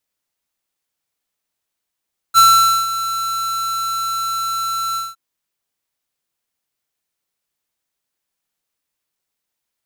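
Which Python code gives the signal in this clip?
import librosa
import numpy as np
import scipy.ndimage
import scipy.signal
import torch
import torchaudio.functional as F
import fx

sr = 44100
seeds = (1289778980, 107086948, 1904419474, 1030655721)

y = fx.adsr_tone(sr, wave='square', hz=1340.0, attack_ms=38.0, decay_ms=485.0, sustain_db=-13.5, held_s=2.62, release_ms=192.0, level_db=-8.0)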